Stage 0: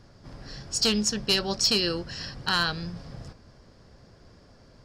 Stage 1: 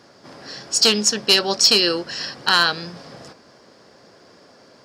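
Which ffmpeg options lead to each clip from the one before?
-af "highpass=300,volume=9dB"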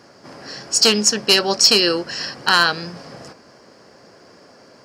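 -af "equalizer=f=3.6k:w=4.9:g=-8,volume=2.5dB"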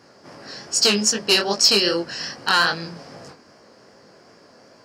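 -af "flanger=delay=17.5:depth=7.6:speed=2.5"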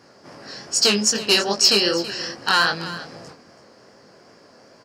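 -af "aecho=1:1:328:0.178"

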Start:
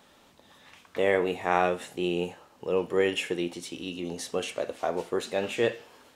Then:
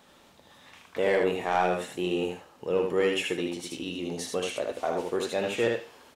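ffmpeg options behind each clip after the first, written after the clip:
-filter_complex "[0:a]asoftclip=type=tanh:threshold=-15dB,asplit=2[a][b];[b]aecho=0:1:77:0.631[c];[a][c]amix=inputs=2:normalize=0"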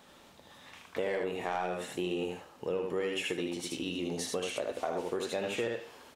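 -af "acompressor=threshold=-30dB:ratio=6"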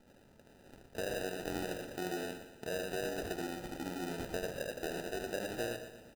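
-af "acrusher=samples=40:mix=1:aa=0.000001,aecho=1:1:119|238|357|476|595:0.282|0.138|0.0677|0.0332|0.0162,volume=-5dB"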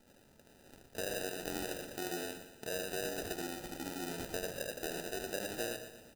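-af "highshelf=f=3.7k:g=8.5,bandreject=f=60:t=h:w=6,bandreject=f=120:t=h:w=6,bandreject=f=180:t=h:w=6,volume=-2dB"

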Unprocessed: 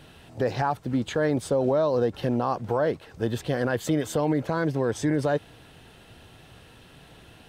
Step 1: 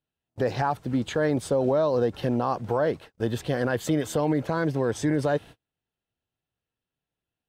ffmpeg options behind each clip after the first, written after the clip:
-af "agate=range=-39dB:threshold=-41dB:ratio=16:detection=peak"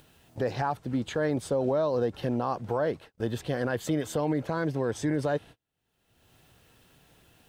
-af "acompressor=mode=upward:threshold=-31dB:ratio=2.5,volume=-3.5dB"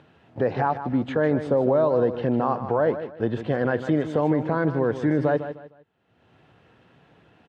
-filter_complex "[0:a]highpass=110,lowpass=2.1k,asplit=2[a][b];[b]aecho=0:1:153|306|459:0.282|0.0817|0.0237[c];[a][c]amix=inputs=2:normalize=0,volume=6dB" -ar 44100 -c:a aac -b:a 96k

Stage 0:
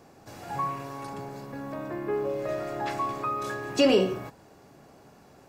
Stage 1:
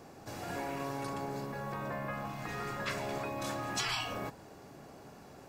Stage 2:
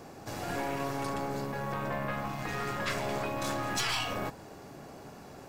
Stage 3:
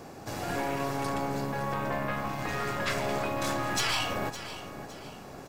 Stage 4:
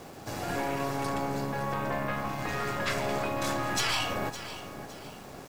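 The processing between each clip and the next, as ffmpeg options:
-af "afftfilt=real='re*lt(hypot(re,im),0.0794)':imag='im*lt(hypot(re,im),0.0794)':win_size=1024:overlap=0.75,volume=1.5dB"
-af "aeval=exprs='(tanh(39.8*val(0)+0.55)-tanh(0.55))/39.8':c=same,volume=7dB"
-af "aecho=1:1:561|1122|1683|2244:0.224|0.0828|0.0306|0.0113,volume=2.5dB"
-af "aeval=exprs='val(0)*gte(abs(val(0)),0.00376)':c=same"

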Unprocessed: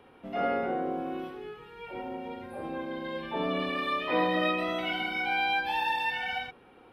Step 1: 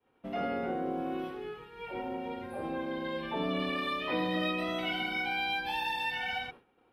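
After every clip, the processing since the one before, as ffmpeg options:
-filter_complex "[0:a]acrossover=split=300|3000[a][b][c];[b]acompressor=threshold=-34dB:ratio=6[d];[a][d][c]amix=inputs=3:normalize=0,agate=range=-33dB:threshold=-45dB:ratio=3:detection=peak,volume=1dB"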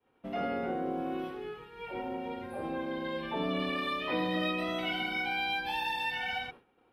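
-af anull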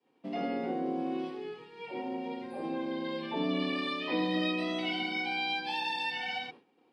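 -af "highpass=f=150:w=0.5412,highpass=f=150:w=1.3066,equalizer=f=290:t=q:w=4:g=5,equalizer=f=610:t=q:w=4:g=-3,equalizer=f=1.4k:t=q:w=4:g=-10,equalizer=f=4.7k:t=q:w=4:g=9,lowpass=f=8.9k:w=0.5412,lowpass=f=8.9k:w=1.3066"

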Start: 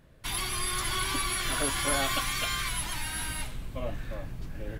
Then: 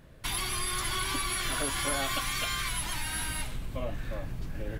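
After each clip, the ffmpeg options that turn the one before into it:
-af "acompressor=threshold=-36dB:ratio=2,volume=4dB"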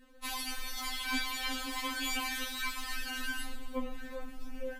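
-af "afftfilt=real='re*3.46*eq(mod(b,12),0)':imag='im*3.46*eq(mod(b,12),0)':win_size=2048:overlap=0.75,volume=-1dB"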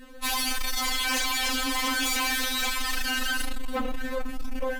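-af "aeval=exprs='0.0841*sin(PI/2*3.55*val(0)/0.0841)':c=same,volume=-1.5dB"

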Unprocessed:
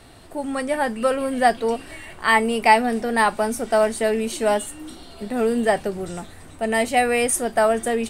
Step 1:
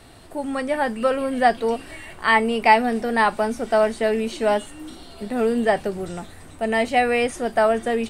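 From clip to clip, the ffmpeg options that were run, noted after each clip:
-filter_complex "[0:a]acrossover=split=5500[a][b];[b]acompressor=threshold=-47dB:ratio=4:attack=1:release=60[c];[a][c]amix=inputs=2:normalize=0"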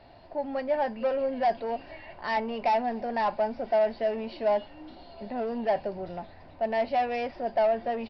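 -af "aresample=11025,asoftclip=type=tanh:threshold=-19dB,aresample=44100,superequalizer=8b=2.82:9b=2.24:10b=0.708:13b=0.631,volume=-8.5dB"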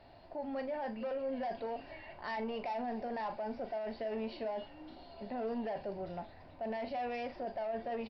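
-filter_complex "[0:a]alimiter=level_in=3.5dB:limit=-24dB:level=0:latency=1:release=12,volume=-3.5dB,asplit=2[a][b];[b]adelay=41,volume=-11.5dB[c];[a][c]amix=inputs=2:normalize=0,volume=-5dB"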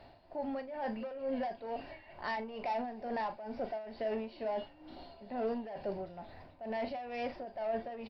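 -af "tremolo=f=2.2:d=0.71,volume=3.5dB"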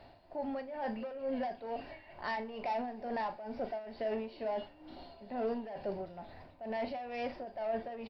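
-af "aecho=1:1:61|122|183:0.0944|0.0434|0.02"

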